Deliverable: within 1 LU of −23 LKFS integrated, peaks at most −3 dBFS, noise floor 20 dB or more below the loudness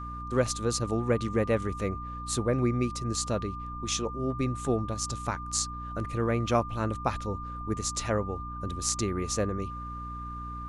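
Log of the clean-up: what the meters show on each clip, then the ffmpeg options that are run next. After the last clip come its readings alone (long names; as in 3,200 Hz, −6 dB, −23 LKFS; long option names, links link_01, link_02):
mains hum 60 Hz; hum harmonics up to 300 Hz; level of the hum −38 dBFS; interfering tone 1,200 Hz; level of the tone −38 dBFS; integrated loudness −30.5 LKFS; sample peak −10.0 dBFS; target loudness −23.0 LKFS
→ -af "bandreject=frequency=60:width_type=h:width=6,bandreject=frequency=120:width_type=h:width=6,bandreject=frequency=180:width_type=h:width=6,bandreject=frequency=240:width_type=h:width=6,bandreject=frequency=300:width_type=h:width=6"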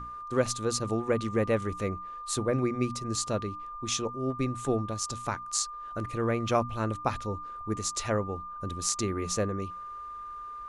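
mains hum none found; interfering tone 1,200 Hz; level of the tone −38 dBFS
→ -af "bandreject=frequency=1200:width=30"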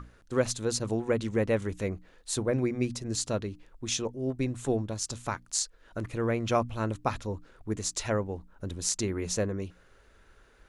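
interfering tone none found; integrated loudness −31.5 LKFS; sample peak −9.5 dBFS; target loudness −23.0 LKFS
→ -af "volume=8.5dB,alimiter=limit=-3dB:level=0:latency=1"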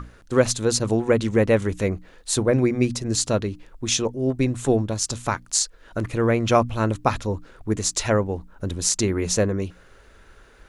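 integrated loudness −23.0 LKFS; sample peak −3.0 dBFS; background noise floor −51 dBFS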